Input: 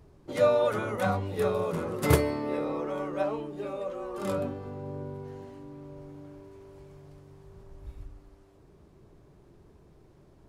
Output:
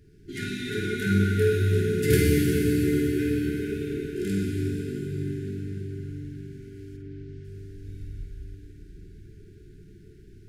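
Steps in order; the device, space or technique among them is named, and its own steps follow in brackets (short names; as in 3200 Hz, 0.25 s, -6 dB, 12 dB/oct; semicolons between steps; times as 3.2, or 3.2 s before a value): cathedral (reverb RT60 4.7 s, pre-delay 8 ms, DRR -4.5 dB); FFT band-reject 450–1400 Hz; 6.96–7.43 LPF 2600 Hz -> 5900 Hz 12 dB/oct; flutter echo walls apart 8.7 m, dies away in 0.41 s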